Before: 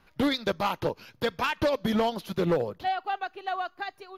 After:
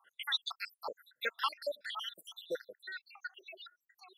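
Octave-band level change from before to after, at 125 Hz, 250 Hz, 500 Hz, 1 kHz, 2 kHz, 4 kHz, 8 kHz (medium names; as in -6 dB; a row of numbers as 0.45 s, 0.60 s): under -35 dB, -31.0 dB, -15.5 dB, -14.0 dB, -7.0 dB, -3.0 dB, -8.0 dB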